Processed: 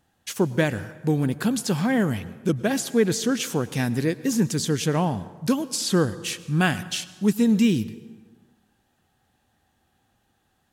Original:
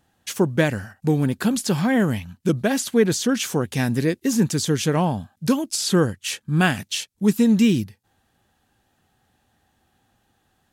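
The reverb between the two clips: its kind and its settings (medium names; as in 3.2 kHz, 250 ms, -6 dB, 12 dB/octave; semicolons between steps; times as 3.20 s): plate-style reverb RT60 1.4 s, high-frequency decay 0.65×, pre-delay 90 ms, DRR 16.5 dB; trim -2.5 dB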